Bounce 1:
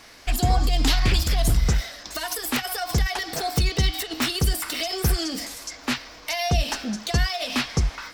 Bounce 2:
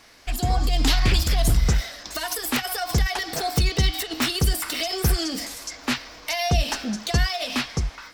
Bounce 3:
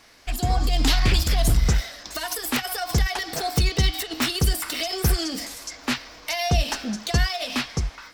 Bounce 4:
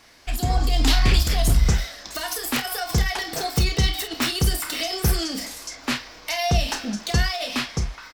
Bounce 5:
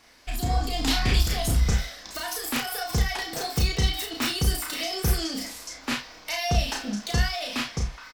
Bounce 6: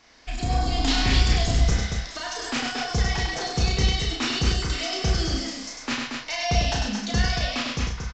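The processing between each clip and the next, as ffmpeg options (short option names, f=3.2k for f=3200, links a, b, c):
-af "dynaudnorm=f=110:g=11:m=5dB,volume=-4dB"
-af "aeval=exprs='0.316*(cos(1*acos(clip(val(0)/0.316,-1,1)))-cos(1*PI/2))+0.00631*(cos(7*acos(clip(val(0)/0.316,-1,1)))-cos(7*PI/2))':c=same"
-af "aecho=1:1:30|49:0.355|0.224"
-filter_complex "[0:a]asplit=2[a][b];[b]adelay=34,volume=-4dB[c];[a][c]amix=inputs=2:normalize=0,volume=-4.5dB"
-filter_complex "[0:a]asplit=2[a][b];[b]aecho=0:1:99.13|230.3:0.631|0.562[c];[a][c]amix=inputs=2:normalize=0,aresample=16000,aresample=44100"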